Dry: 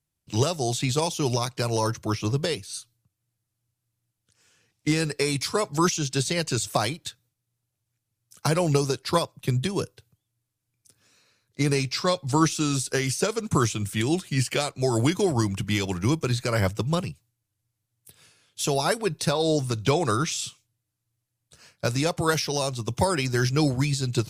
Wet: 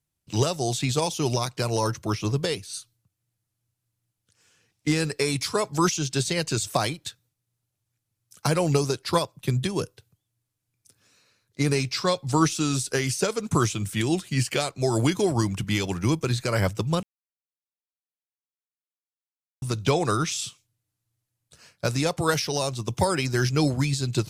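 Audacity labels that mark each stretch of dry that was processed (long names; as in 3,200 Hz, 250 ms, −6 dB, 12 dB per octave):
17.030000	19.620000	silence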